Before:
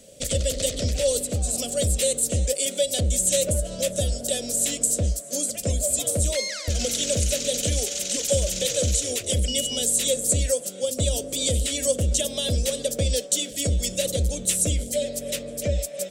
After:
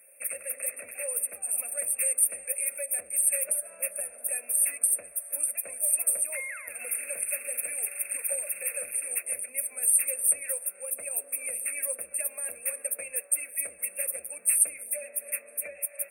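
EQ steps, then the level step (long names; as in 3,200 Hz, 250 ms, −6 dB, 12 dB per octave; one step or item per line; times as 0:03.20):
high-pass filter 1,400 Hz 12 dB per octave
linear-phase brick-wall band-stop 2,700–8,500 Hz
high-shelf EQ 5,500 Hz +5 dB
0.0 dB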